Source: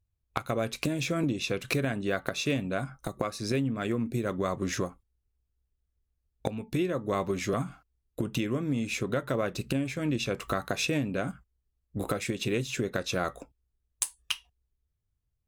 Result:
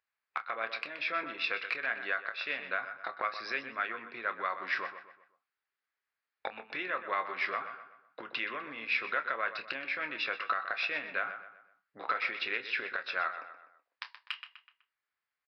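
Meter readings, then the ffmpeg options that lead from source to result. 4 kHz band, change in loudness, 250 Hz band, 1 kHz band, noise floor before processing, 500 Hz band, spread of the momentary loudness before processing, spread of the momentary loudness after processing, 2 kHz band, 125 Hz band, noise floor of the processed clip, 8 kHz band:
-4.0 dB, -3.5 dB, -21.0 dB, +1.5 dB, -80 dBFS, -11.0 dB, 7 LU, 12 LU, +4.5 dB, under -30 dB, under -85 dBFS, under -25 dB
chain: -filter_complex "[0:a]asplit=2[a][b];[b]acompressor=threshold=-38dB:ratio=6,volume=2.5dB[c];[a][c]amix=inputs=2:normalize=0,aresample=11025,aresample=44100,acontrast=53,highpass=1.5k,highshelf=f=2.5k:t=q:w=1.5:g=-9.5,asplit=2[d][e];[e]adelay=27,volume=-12dB[f];[d][f]amix=inputs=2:normalize=0,asplit=2[g][h];[h]adelay=125,lowpass=f=3.7k:p=1,volume=-11dB,asplit=2[i][j];[j]adelay=125,lowpass=f=3.7k:p=1,volume=0.39,asplit=2[k][l];[l]adelay=125,lowpass=f=3.7k:p=1,volume=0.39,asplit=2[m][n];[n]adelay=125,lowpass=f=3.7k:p=1,volume=0.39[o];[i][k][m][o]amix=inputs=4:normalize=0[p];[g][p]amix=inputs=2:normalize=0,alimiter=limit=-19dB:level=0:latency=1:release=436"

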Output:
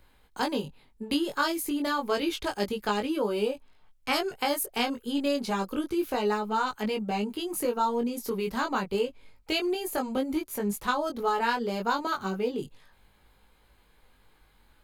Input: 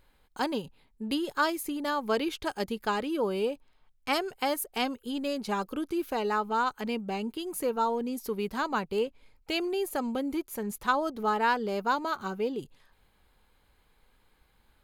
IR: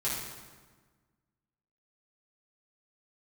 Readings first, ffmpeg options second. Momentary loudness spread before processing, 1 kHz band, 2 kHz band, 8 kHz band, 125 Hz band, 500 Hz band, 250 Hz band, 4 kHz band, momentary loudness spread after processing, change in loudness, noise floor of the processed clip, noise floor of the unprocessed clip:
6 LU, 0.0 dB, +0.5 dB, +3.5 dB, +3.5 dB, +1.5 dB, +2.5 dB, +3.0 dB, 4 LU, +1.5 dB, -62 dBFS, -67 dBFS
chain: -filter_complex "[0:a]acrossover=split=150|3000[a][b][c];[b]acompressor=threshold=-31dB:ratio=2[d];[a][d][c]amix=inputs=3:normalize=0,flanger=delay=19:depth=2.3:speed=0.3,volume=7dB"

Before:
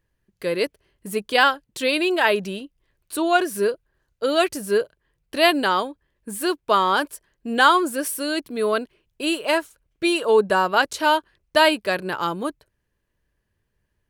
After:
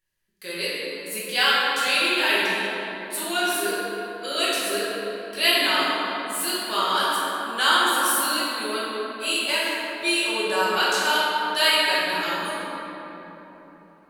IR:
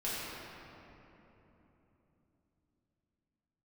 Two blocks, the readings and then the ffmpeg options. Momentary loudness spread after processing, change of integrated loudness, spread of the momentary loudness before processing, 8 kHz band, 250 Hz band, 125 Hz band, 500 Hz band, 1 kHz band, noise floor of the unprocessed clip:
12 LU, -1.0 dB, 13 LU, +5.5 dB, -6.5 dB, n/a, -6.5 dB, -2.5 dB, -75 dBFS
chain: -filter_complex "[0:a]tiltshelf=f=1.5k:g=-10[a];[1:a]atrim=start_sample=2205,asetrate=37926,aresample=44100[b];[a][b]afir=irnorm=-1:irlink=0,volume=-6.5dB"

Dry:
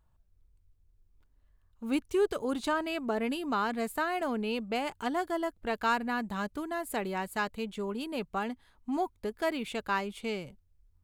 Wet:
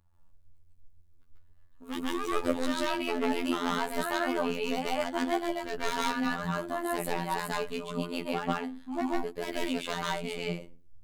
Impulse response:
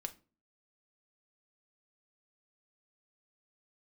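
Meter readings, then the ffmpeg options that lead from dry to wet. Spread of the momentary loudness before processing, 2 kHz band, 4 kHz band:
7 LU, +0.5 dB, +4.5 dB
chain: -filter_complex "[0:a]aeval=exprs='0.0501*(abs(mod(val(0)/0.0501+3,4)-2)-1)':c=same,asplit=2[a][b];[1:a]atrim=start_sample=2205,adelay=140[c];[b][c]afir=irnorm=-1:irlink=0,volume=6dB[d];[a][d]amix=inputs=2:normalize=0,aphaser=in_gain=1:out_gain=1:delay=4.6:decay=0.5:speed=2:type=triangular,afftfilt=real='hypot(re,im)*cos(PI*b)':imag='0':win_size=2048:overlap=0.75"

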